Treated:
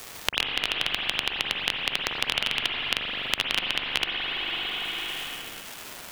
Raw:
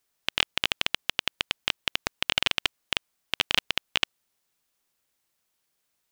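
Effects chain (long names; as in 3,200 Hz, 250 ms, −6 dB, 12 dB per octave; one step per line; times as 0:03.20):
surface crackle 450 per second −57 dBFS
in parallel at −6 dB: hard clipping −12.5 dBFS, distortion −8 dB
on the sum: spring reverb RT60 2 s, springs 41/56 ms, chirp 55 ms, DRR 0 dB
multiband upward and downward compressor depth 100%
level −3.5 dB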